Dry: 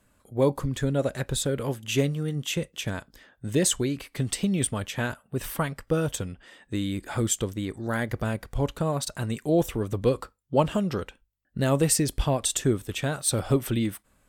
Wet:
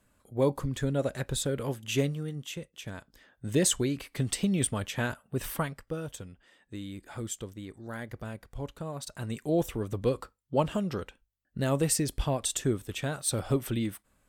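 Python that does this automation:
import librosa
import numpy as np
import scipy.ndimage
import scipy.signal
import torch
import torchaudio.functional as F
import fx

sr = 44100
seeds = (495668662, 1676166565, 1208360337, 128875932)

y = fx.gain(x, sr, db=fx.line((2.05, -3.5), (2.67, -12.0), (3.54, -2.0), (5.54, -2.0), (5.97, -11.0), (8.92, -11.0), (9.36, -4.5)))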